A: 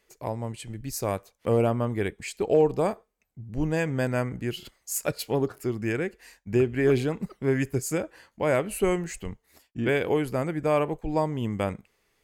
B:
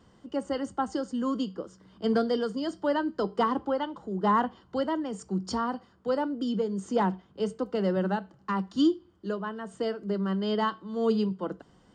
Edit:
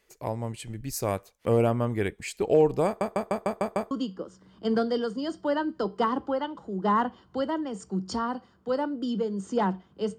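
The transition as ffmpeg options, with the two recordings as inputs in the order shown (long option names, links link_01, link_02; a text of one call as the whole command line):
ffmpeg -i cue0.wav -i cue1.wav -filter_complex "[0:a]apad=whole_dur=10.18,atrim=end=10.18,asplit=7[link_01][link_02][link_03][link_04][link_05][link_06][link_07];[link_01]atrim=end=3.012[link_08];[link_02]atrim=start=2.858:end=3.012[link_09];[link_03]atrim=start=2.858:end=3.012[link_10];[link_04]atrim=start=2.858:end=3.012[link_11];[link_05]atrim=start=2.858:end=3.012[link_12];[link_06]atrim=start=2.858:end=3.012[link_13];[link_07]atrim=start=2.858:end=3.012[link_14];[1:a]atrim=start=1.298:end=7.57[link_15];[link_08][link_09]acrossfade=duration=0.004:curve1=hsin:curve2=hsin[link_16];[link_16][link_10]acrossfade=duration=0.004:curve1=hsin:curve2=hsin[link_17];[link_17][link_11]acrossfade=duration=0.004:curve1=hsin:curve2=hsin[link_18];[link_18][link_12]acrossfade=duration=0.004:curve1=hsin:curve2=hsin[link_19];[link_19][link_13]acrossfade=duration=0.004:curve1=hsin:curve2=hsin[link_20];[link_20][link_14]acrossfade=duration=0.004:curve1=hsin:curve2=hsin[link_21];[link_21][link_15]acrossfade=duration=0.004:curve1=hsin:curve2=hsin" out.wav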